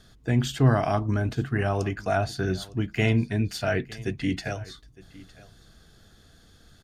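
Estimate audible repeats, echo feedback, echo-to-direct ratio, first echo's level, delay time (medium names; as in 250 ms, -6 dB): 1, no regular repeats, -20.5 dB, -20.5 dB, 909 ms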